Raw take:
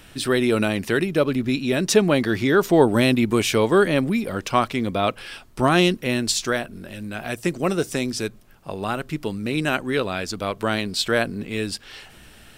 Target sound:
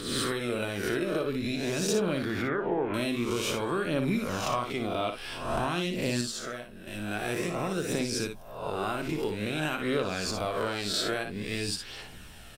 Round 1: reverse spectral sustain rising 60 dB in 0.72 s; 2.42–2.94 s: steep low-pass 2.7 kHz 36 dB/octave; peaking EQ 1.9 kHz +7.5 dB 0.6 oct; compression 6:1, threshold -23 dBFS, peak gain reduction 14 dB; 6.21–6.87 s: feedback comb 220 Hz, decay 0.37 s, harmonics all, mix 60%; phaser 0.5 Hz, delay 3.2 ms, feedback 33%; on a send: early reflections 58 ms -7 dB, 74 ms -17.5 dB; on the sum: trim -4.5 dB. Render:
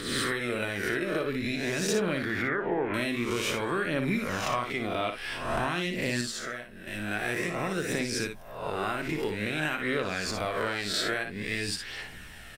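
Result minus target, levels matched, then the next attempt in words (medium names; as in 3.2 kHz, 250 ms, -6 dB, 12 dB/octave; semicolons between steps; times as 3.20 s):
2 kHz band +4.5 dB
reverse spectral sustain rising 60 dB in 0.72 s; 2.42–2.94 s: steep low-pass 2.7 kHz 36 dB/octave; peaking EQ 1.9 kHz -2.5 dB 0.6 oct; compression 6:1, threshold -23 dBFS, peak gain reduction 13.5 dB; 6.21–6.87 s: feedback comb 220 Hz, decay 0.37 s, harmonics all, mix 60%; phaser 0.5 Hz, delay 3.2 ms, feedback 33%; on a send: early reflections 58 ms -7 dB, 74 ms -17.5 dB; on the sum: trim -4.5 dB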